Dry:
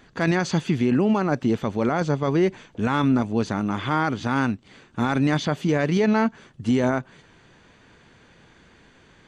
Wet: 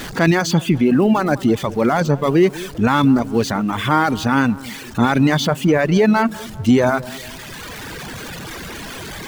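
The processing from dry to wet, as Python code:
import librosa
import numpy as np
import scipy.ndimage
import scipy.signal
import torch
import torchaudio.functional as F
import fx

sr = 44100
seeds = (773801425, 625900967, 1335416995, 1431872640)

p1 = x + 0.5 * 10.0 ** (-32.0 / 20.0) * np.sign(x)
p2 = fx.rider(p1, sr, range_db=4, speed_s=2.0)
p3 = p1 + F.gain(torch.from_numpy(p2), 1.5).numpy()
p4 = fx.dereverb_blind(p3, sr, rt60_s=1.8)
y = fx.echo_wet_lowpass(p4, sr, ms=199, feedback_pct=48, hz=1300.0, wet_db=-18)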